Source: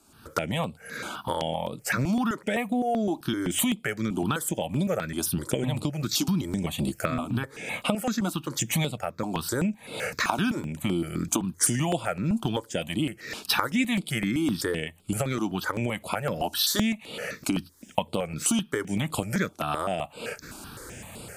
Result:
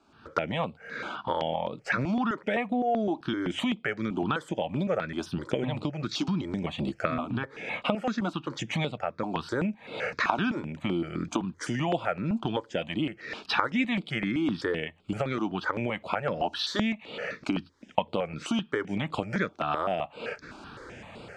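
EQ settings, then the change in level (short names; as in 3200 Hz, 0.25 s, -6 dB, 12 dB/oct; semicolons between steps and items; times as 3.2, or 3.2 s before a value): air absorption 160 m; low shelf 220 Hz -9 dB; high shelf 7200 Hz -11.5 dB; +2.0 dB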